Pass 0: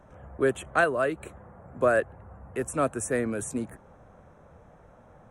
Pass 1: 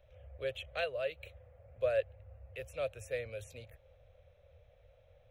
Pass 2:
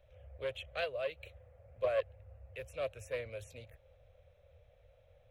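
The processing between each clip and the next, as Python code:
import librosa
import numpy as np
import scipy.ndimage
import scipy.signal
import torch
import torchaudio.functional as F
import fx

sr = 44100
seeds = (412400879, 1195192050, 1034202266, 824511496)

y1 = fx.curve_eq(x, sr, hz=(100.0, 200.0, 340.0, 530.0, 950.0, 1600.0, 2400.0, 3900.0, 9100.0, 13000.0), db=(0, -26, -27, 1, -21, -13, 4, 6, -23, 2))
y1 = y1 * librosa.db_to_amplitude(-5.0)
y2 = fx.doppler_dist(y1, sr, depth_ms=0.18)
y2 = y2 * librosa.db_to_amplitude(-1.0)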